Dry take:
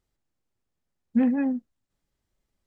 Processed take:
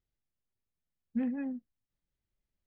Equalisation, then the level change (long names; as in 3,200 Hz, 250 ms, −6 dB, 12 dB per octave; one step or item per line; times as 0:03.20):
high-frequency loss of the air 140 metres
parametric band 320 Hz −3.5 dB 1.6 octaves
parametric band 930 Hz −6 dB 1.4 octaves
−7.0 dB